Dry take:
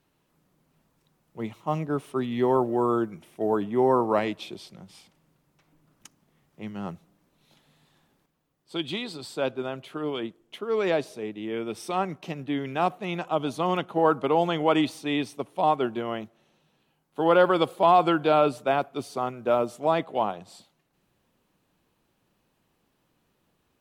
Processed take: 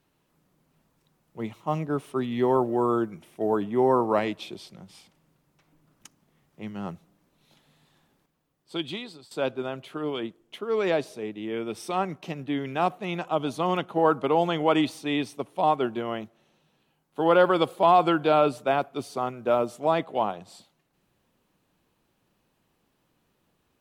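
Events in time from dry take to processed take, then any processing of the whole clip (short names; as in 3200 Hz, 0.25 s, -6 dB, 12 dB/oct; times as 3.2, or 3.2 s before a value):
8.76–9.31 fade out, to -16.5 dB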